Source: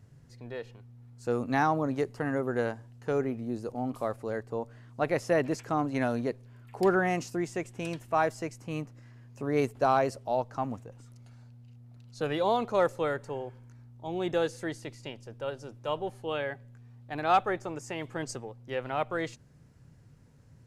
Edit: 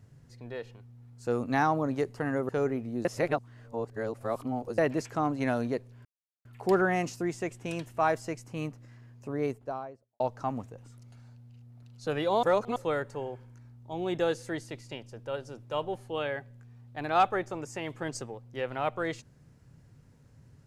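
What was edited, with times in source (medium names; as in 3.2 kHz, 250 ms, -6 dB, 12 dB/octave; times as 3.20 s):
2.49–3.03 s: delete
3.59–5.32 s: reverse
6.59 s: insert silence 0.40 s
9.08–10.34 s: studio fade out
12.57–12.90 s: reverse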